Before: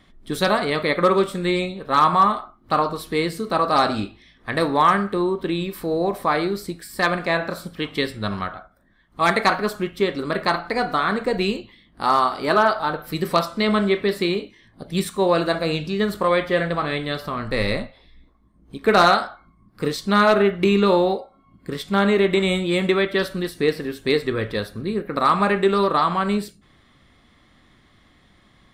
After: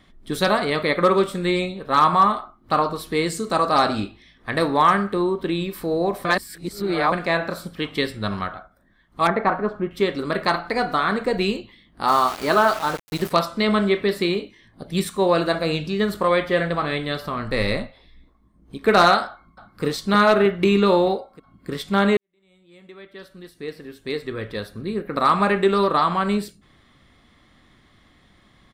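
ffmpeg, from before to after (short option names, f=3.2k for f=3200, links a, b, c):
-filter_complex "[0:a]asettb=1/sr,asplit=3[a][b][c];[a]atrim=end=3.264[d];[b]atrim=start=3.26:end=3.69,asetpts=PTS-STARTPTS,afade=t=in:d=0.004:c=qsin,afade=t=out:st=0.426:d=0.004:c=qsin,equalizer=f=7.3k:w=1.9:g=13[e];[c]atrim=start=3.686[f];[d][e]acrossfade=d=0.004:c1=hsin:c2=qsin[g];[g][f]acrossfade=d=0.004:c1=qsin:c2=hsin,asettb=1/sr,asplit=3[h][i][j];[h]atrim=end=9.274[k];[i]atrim=start=9.27:end=9.91,asetpts=PTS-STARTPTS,afade=t=in:d=0.004:c=qsin,afade=t=out:st=0.636:d=0.004:c=qsin,lowpass=1.3k[l];[j]atrim=start=9.906[m];[k][l]acrossfade=d=0.004:c1=hsin:c2=qsin[n];[n][m]acrossfade=d=0.004:c1=qsin:c2=hsin,asplit=3[o][p][q];[o]afade=t=out:st=12.07:d=0.02[r];[p]aeval=exprs='val(0)*gte(abs(val(0)),0.0355)':c=same,afade=t=in:st=12.07:d=0.02,afade=t=out:st=13.3:d=0.02[s];[q]afade=t=in:st=13.3:d=0.02[t];[r][s][t]amix=inputs=3:normalize=0,asplit=2[u][v];[v]afade=t=in:st=19.26:d=0.01,afade=t=out:st=19.84:d=0.01,aecho=0:1:310|620|930|1240|1550|1860|2170|2480|2790|3100|3410:0.446684|0.312679|0.218875|0.153212|0.107249|0.0750741|0.0525519|0.0367863|0.0257504|0.0180253|0.0126177[w];[u][w]amix=inputs=2:normalize=0,asplit=4[x][y][z][aa];[x]atrim=end=6.252[ab];[y]atrim=start=6.248:end=7.122,asetpts=PTS-STARTPTS,areverse[ac];[z]atrim=start=7.118:end=22.17,asetpts=PTS-STARTPTS,afade=t=out:st=15.048:d=0.004:c=hsin[ad];[aa]atrim=start=22.17,asetpts=PTS-STARTPTS,afade=t=in:d=3.06:c=qua[ae];[ab][ac]acrossfade=d=0.004:c1=hsin:c2=hsin[af];[ad][ae]concat=n=2:v=0:a=1[ag];[af][ag]acrossfade=d=0.004:c1=hsin:c2=hsin"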